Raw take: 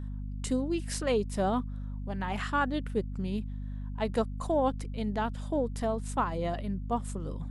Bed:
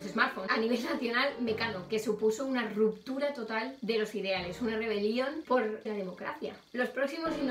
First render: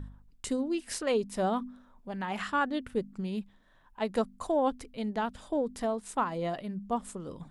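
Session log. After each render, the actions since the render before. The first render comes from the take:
hum removal 50 Hz, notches 5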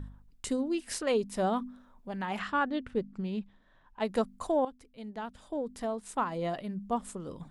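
0:02.39–0:04.00: high-frequency loss of the air 92 metres
0:04.65–0:06.51: fade in, from −15 dB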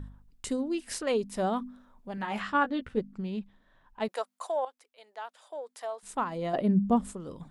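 0:02.16–0:03.00: double-tracking delay 14 ms −5 dB
0:04.08–0:06.03: high-pass filter 550 Hz 24 dB per octave
0:06.53–0:07.12: parametric band 500 Hz → 74 Hz +14.5 dB 2.9 octaves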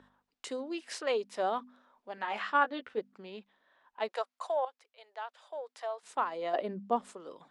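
high-pass filter 150 Hz 6 dB per octave
three-way crossover with the lows and the highs turned down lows −23 dB, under 350 Hz, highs −15 dB, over 6,100 Hz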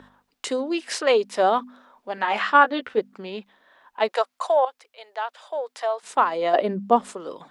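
level +12 dB
brickwall limiter −3 dBFS, peak gain reduction 1.5 dB

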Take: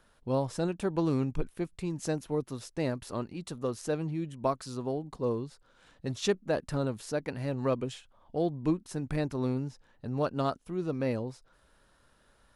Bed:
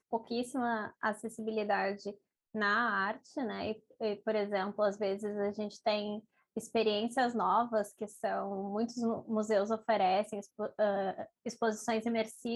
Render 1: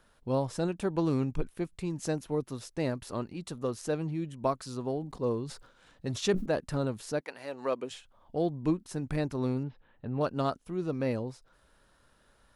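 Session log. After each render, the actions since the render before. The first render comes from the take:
0:04.86–0:06.46: level that may fall only so fast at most 92 dB per second
0:07.19–0:07.90: high-pass filter 720 Hz → 310 Hz
0:09.63–0:10.21: Butterworth low-pass 3,500 Hz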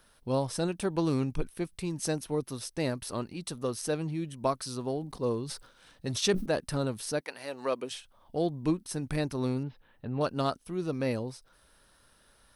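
high-shelf EQ 3,600 Hz +10.5 dB
notch filter 7,100 Hz, Q 5.2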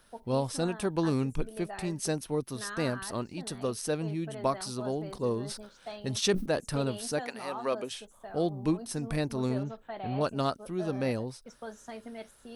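mix in bed −10.5 dB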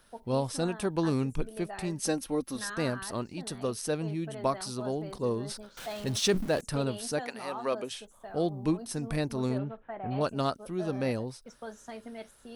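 0:02.03–0:02.70: comb filter 3.7 ms
0:05.77–0:06.61: converter with a step at zero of −38.5 dBFS
0:09.57–0:10.10: low-pass filter 3,400 Hz → 1,900 Hz 24 dB per octave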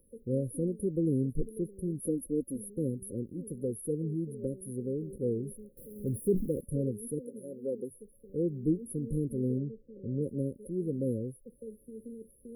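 brick-wall band-stop 560–9,600 Hz
dynamic equaliser 570 Hz, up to −4 dB, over −44 dBFS, Q 3.3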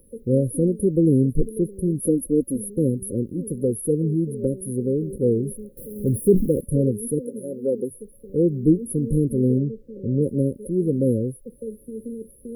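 level +11.5 dB

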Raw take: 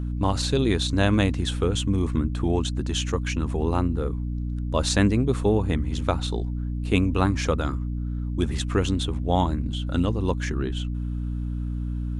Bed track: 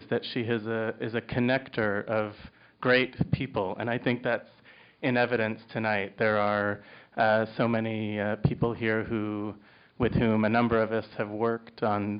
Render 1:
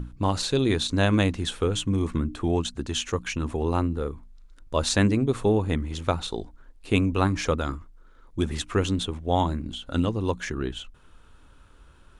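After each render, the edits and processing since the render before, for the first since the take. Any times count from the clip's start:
mains-hum notches 60/120/180/240/300 Hz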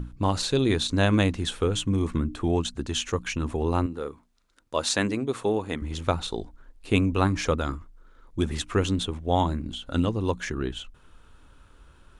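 0:03.86–0:05.82: high-pass filter 370 Hz 6 dB per octave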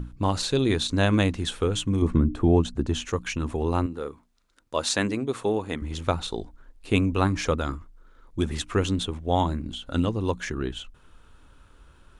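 0:02.02–0:03.05: tilt shelving filter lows +6 dB, about 1,200 Hz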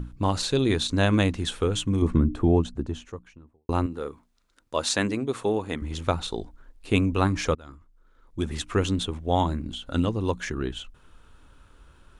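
0:02.23–0:03.69: fade out and dull
0:07.55–0:08.76: fade in, from −23 dB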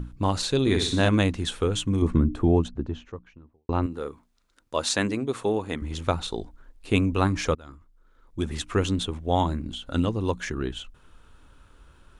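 0:00.61–0:01.09: flutter between parallel walls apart 10 metres, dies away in 0.56 s
0:02.68–0:03.83: high-frequency loss of the air 150 metres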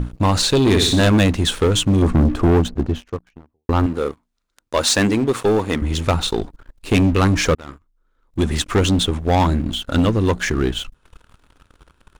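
leveller curve on the samples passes 3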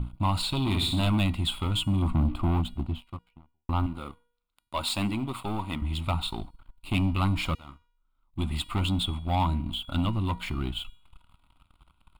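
phaser with its sweep stopped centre 1,700 Hz, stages 6
tuned comb filter 480 Hz, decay 0.6 s, mix 60%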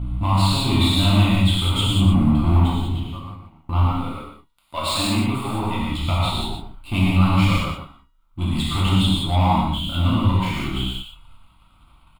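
on a send: single-tap delay 120 ms −7.5 dB
on the sum: reverb whose tail is shaped and stops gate 220 ms flat, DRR −7 dB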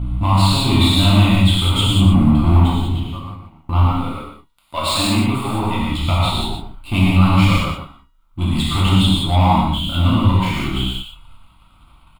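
level +4 dB
brickwall limiter −2 dBFS, peak gain reduction 1 dB

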